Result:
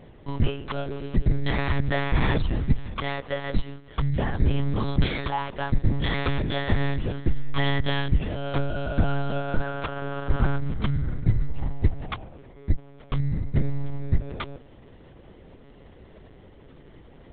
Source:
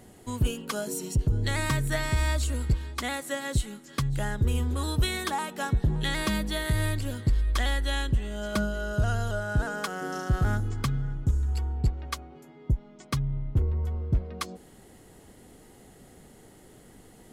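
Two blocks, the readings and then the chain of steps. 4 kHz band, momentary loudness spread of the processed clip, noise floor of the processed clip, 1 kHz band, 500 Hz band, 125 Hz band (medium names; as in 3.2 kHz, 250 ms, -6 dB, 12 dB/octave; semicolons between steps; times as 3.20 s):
-0.5 dB, 7 LU, -49 dBFS, +2.5 dB, +3.5 dB, +2.0 dB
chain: in parallel at -8 dB: sample-and-hold 22×; on the sum: monotone LPC vocoder at 8 kHz 140 Hz; trim +1.5 dB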